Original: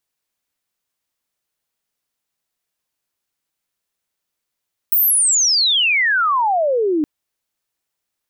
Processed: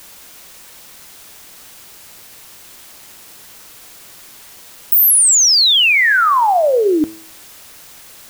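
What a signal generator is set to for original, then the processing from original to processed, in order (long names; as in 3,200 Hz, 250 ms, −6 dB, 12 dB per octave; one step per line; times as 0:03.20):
glide logarithmic 16,000 Hz → 290 Hz −11.5 dBFS → −14.5 dBFS 2.12 s
hum removal 108.1 Hz, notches 22
in parallel at −4 dB: bit-depth reduction 6 bits, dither triangular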